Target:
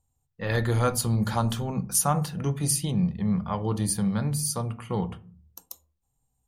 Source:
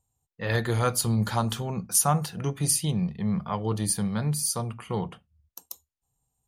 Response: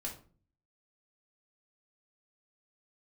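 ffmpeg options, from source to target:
-filter_complex "[0:a]asplit=2[a][b];[1:a]atrim=start_sample=2205,lowpass=2.2k,lowshelf=f=240:g=9[c];[b][c]afir=irnorm=-1:irlink=0,volume=-9dB[d];[a][d]amix=inputs=2:normalize=0,volume=-1.5dB"

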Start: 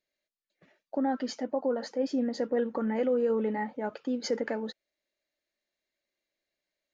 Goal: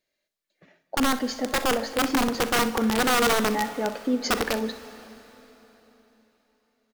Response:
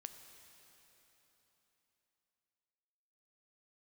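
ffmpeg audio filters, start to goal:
-filter_complex "[0:a]aeval=exprs='(mod(13.3*val(0)+1,2)-1)/13.3':c=same,aecho=1:1:40|63:0.158|0.188,asplit=2[a][b];[1:a]atrim=start_sample=2205[c];[b][c]afir=irnorm=-1:irlink=0,volume=5.5dB[d];[a][d]amix=inputs=2:normalize=0"

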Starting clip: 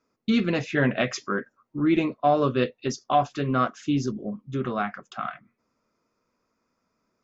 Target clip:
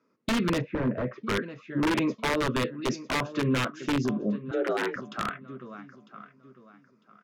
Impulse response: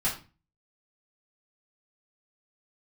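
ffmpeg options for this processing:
-filter_complex "[0:a]highpass=f=130:w=0.5412,highpass=f=130:w=1.3066,acompressor=threshold=-23dB:ratio=3,aecho=1:1:951|1902|2853:0.141|0.0381|0.0103,aeval=exprs='(mod(9.44*val(0)+1,2)-1)/9.44':c=same,equalizer=f=750:t=o:w=0.28:g=-12.5,asettb=1/sr,asplit=3[a][b][c];[a]atrim=end=4.514[d];[b]atrim=start=4.51:end=4.96,asetpts=PTS-STARTPTS,afade=t=in:d=0.004:c=qsin,afade=t=out:st=0.446:d=0.004:c=qsin,afreqshift=170[e];[c]atrim=start=4.956[f];[d][e]acrossfade=d=0.004:c1=hsin:c2=qsin[g];[g][f]acrossfade=d=0.004:c1=qsin:c2=hsin,aemphasis=mode=reproduction:type=75fm,alimiter=limit=-23dB:level=0:latency=1:release=10,asplit=3[h][i][j];[h]afade=t=out:st=0.6:d=0.02[k];[i]lowpass=1k,afade=t=in:st=0.6:d=0.02,afade=t=out:st=1.26:d=0.02[l];[j]afade=t=in:st=1.26:d=0.02[m];[k][l][m]amix=inputs=3:normalize=0,volume=4dB"

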